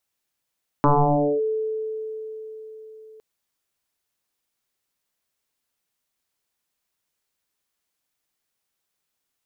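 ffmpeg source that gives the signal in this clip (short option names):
-f lavfi -i "aevalsrc='0.237*pow(10,-3*t/4.55)*sin(2*PI*437*t+5.1*clip(1-t/0.57,0,1)*sin(2*PI*0.33*437*t))':d=2.36:s=44100"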